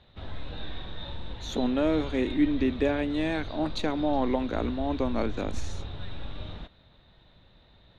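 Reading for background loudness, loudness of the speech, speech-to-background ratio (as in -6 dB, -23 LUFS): -40.0 LUFS, -28.5 LUFS, 11.5 dB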